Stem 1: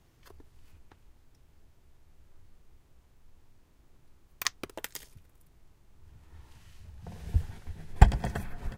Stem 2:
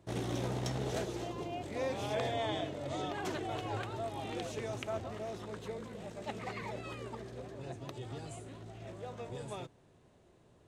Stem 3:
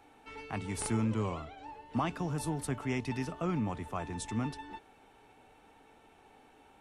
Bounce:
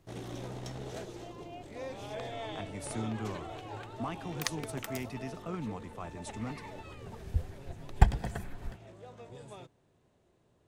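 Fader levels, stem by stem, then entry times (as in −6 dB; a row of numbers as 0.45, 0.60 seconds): −4.0, −5.5, −5.5 decibels; 0.00, 0.00, 2.05 seconds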